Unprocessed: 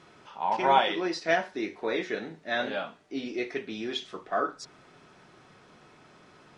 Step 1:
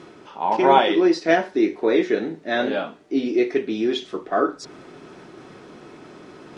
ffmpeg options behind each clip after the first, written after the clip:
ffmpeg -i in.wav -af "equalizer=frequency=330:width_type=o:width=1.3:gain=10.5,areverse,acompressor=mode=upward:threshold=-40dB:ratio=2.5,areverse,volume=4dB" out.wav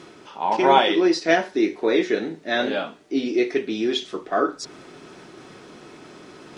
ffmpeg -i in.wav -af "highshelf=frequency=2600:gain=7.5,volume=-1.5dB" out.wav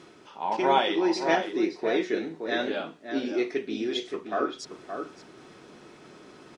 ffmpeg -i in.wav -filter_complex "[0:a]asplit=2[link_01][link_02];[link_02]adelay=571.4,volume=-7dB,highshelf=frequency=4000:gain=-12.9[link_03];[link_01][link_03]amix=inputs=2:normalize=0,volume=-6.5dB" out.wav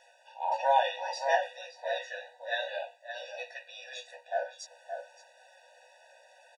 ffmpeg -i in.wav -filter_complex "[0:a]asplit=2[link_01][link_02];[link_02]adelay=16,volume=-5.5dB[link_03];[link_01][link_03]amix=inputs=2:normalize=0,afftfilt=real='re*eq(mod(floor(b*sr/1024/490),2),1)':imag='im*eq(mod(floor(b*sr/1024/490),2),1)':win_size=1024:overlap=0.75,volume=-2.5dB" out.wav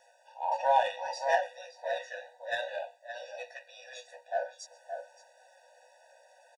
ffmpeg -i in.wav -filter_complex "[0:a]acrossover=split=850|3600[link_01][link_02][link_03];[link_02]adynamicsmooth=sensitivity=5:basefreq=2400[link_04];[link_03]aecho=1:1:130:0.0841[link_05];[link_01][link_04][link_05]amix=inputs=3:normalize=0" out.wav

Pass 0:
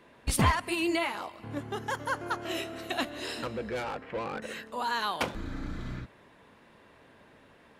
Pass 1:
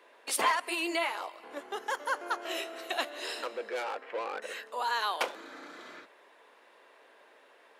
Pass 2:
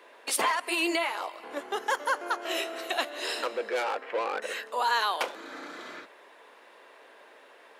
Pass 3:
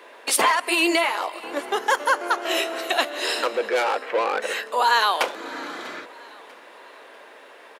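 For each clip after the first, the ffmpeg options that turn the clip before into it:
ffmpeg -i in.wav -af "highpass=frequency=400:width=0.5412,highpass=frequency=400:width=1.3066" out.wav
ffmpeg -i in.wav -af "alimiter=limit=-22dB:level=0:latency=1:release=343,volume=5.5dB" out.wav
ffmpeg -i in.wav -af "aecho=1:1:644|1288|1932:0.0891|0.0401|0.018,volume=7.5dB" out.wav

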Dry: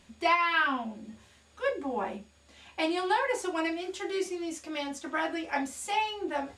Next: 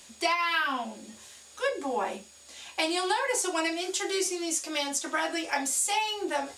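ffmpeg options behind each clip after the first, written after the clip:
ffmpeg -i in.wav -filter_complex "[0:a]bass=frequency=250:gain=-12,treble=frequency=4000:gain=13,acrossover=split=190[link_01][link_02];[link_02]acompressor=threshold=-29dB:ratio=4[link_03];[link_01][link_03]amix=inputs=2:normalize=0,volume=4.5dB" out.wav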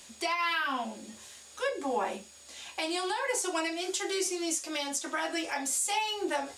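ffmpeg -i in.wav -af "alimiter=limit=-20dB:level=0:latency=1:release=276" out.wav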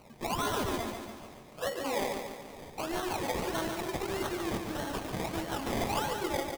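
ffmpeg -i in.wav -filter_complex "[0:a]acrusher=samples=25:mix=1:aa=0.000001:lfo=1:lforange=15:lforate=1.6,asplit=2[link_01][link_02];[link_02]aecho=0:1:143|286|429|572|715|858|1001:0.501|0.266|0.141|0.0746|0.0395|0.021|0.0111[link_03];[link_01][link_03]amix=inputs=2:normalize=0,volume=-2.5dB" out.wav

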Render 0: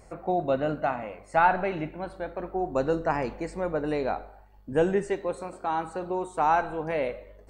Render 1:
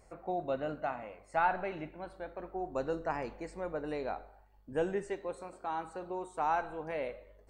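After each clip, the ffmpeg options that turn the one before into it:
ffmpeg -i in.wav -af "equalizer=frequency=160:width=0.73:gain=-3.5,volume=-8dB" out.wav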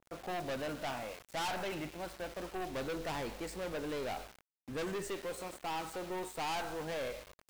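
ffmpeg -i in.wav -af "aeval=exprs='val(0)*gte(abs(val(0)),0.00237)':channel_layout=same,aeval=exprs='(tanh(100*val(0)+0.2)-tanh(0.2))/100':channel_layout=same,adynamicequalizer=threshold=0.00141:dfrequency=2000:dqfactor=0.7:tfrequency=2000:tqfactor=0.7:attack=5:release=100:ratio=0.375:range=3:mode=boostabove:tftype=highshelf,volume=4.5dB" out.wav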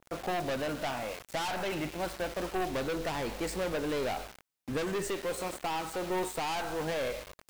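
ffmpeg -i in.wav -af "alimiter=level_in=9.5dB:limit=-24dB:level=0:latency=1:release=396,volume=-9.5dB,volume=8dB" out.wav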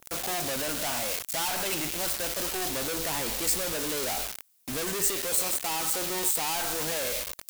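ffmpeg -i in.wav -af "asoftclip=type=tanh:threshold=-38.5dB,crystalizer=i=4.5:c=0,volume=5.5dB" out.wav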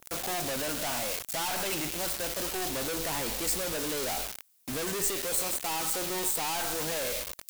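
ffmpeg -i in.wav -af "aeval=exprs='(tanh(8.91*val(0)+0.2)-tanh(0.2))/8.91':channel_layout=same" out.wav

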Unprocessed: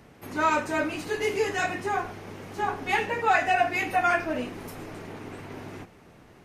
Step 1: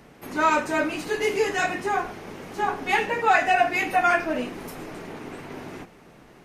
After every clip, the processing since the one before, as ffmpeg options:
ffmpeg -i in.wav -af "equalizer=frequency=90:width=2.5:gain=-11,volume=3dB" out.wav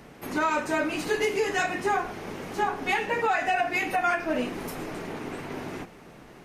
ffmpeg -i in.wav -af "alimiter=limit=-18dB:level=0:latency=1:release=252,volume=2dB" out.wav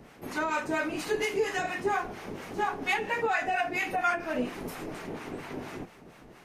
ffmpeg -i in.wav -filter_complex "[0:a]acrossover=split=730[link_01][link_02];[link_01]aeval=exprs='val(0)*(1-0.7/2+0.7/2*cos(2*PI*4.3*n/s))':channel_layout=same[link_03];[link_02]aeval=exprs='val(0)*(1-0.7/2-0.7/2*cos(2*PI*4.3*n/s))':channel_layout=same[link_04];[link_03][link_04]amix=inputs=2:normalize=0" out.wav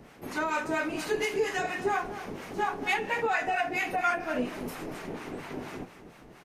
ffmpeg -i in.wav -af "aecho=1:1:234:0.2" out.wav

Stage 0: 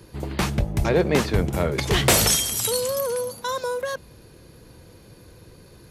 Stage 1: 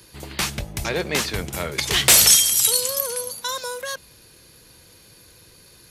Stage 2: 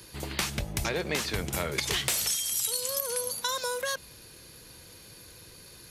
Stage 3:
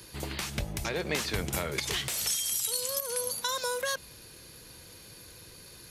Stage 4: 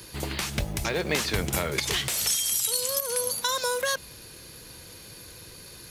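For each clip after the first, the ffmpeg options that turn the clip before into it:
ffmpeg -i in.wav -af "tiltshelf=frequency=1400:gain=-8" out.wav
ffmpeg -i in.wav -af "acompressor=threshold=-26dB:ratio=10" out.wav
ffmpeg -i in.wav -af "alimiter=limit=-18dB:level=0:latency=1:release=231" out.wav
ffmpeg -i in.wav -af "acrusher=bits=7:mode=log:mix=0:aa=0.000001,volume=4.5dB" out.wav

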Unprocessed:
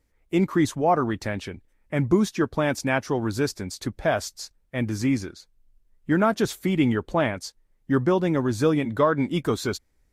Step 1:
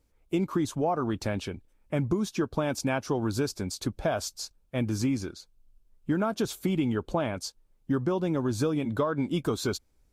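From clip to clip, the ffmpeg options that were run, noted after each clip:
ffmpeg -i in.wav -af "equalizer=frequency=1900:width_type=o:width=0.32:gain=-11,acompressor=threshold=-23dB:ratio=10" out.wav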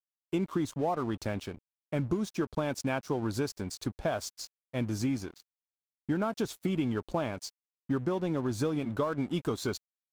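ffmpeg -i in.wav -af "aeval=exprs='sgn(val(0))*max(abs(val(0))-0.00531,0)':channel_layout=same,volume=-2.5dB" out.wav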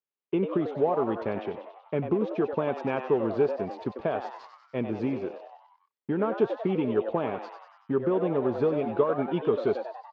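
ffmpeg -i in.wav -filter_complex "[0:a]highpass=170,equalizer=frequency=290:width_type=q:width=4:gain=-4,equalizer=frequency=420:width_type=q:width=4:gain=9,equalizer=frequency=680:width_type=q:width=4:gain=-3,equalizer=frequency=1500:width_type=q:width=4:gain=-5,equalizer=frequency=2100:width_type=q:width=4:gain=-4,lowpass=frequency=2700:width=0.5412,lowpass=frequency=2700:width=1.3066,asplit=2[link_01][link_02];[link_02]asplit=6[link_03][link_04][link_05][link_06][link_07][link_08];[link_03]adelay=95,afreqshift=120,volume=-9dB[link_09];[link_04]adelay=190,afreqshift=240,volume=-14.2dB[link_10];[link_05]adelay=285,afreqshift=360,volume=-19.4dB[link_11];[link_06]adelay=380,afreqshift=480,volume=-24.6dB[link_12];[link_07]adelay=475,afreqshift=600,volume=-29.8dB[link_13];[link_08]adelay=570,afreqshift=720,volume=-35dB[link_14];[link_09][link_10][link_11][link_12][link_13][link_14]amix=inputs=6:normalize=0[link_15];[link_01][link_15]amix=inputs=2:normalize=0,volume=3.5dB" out.wav

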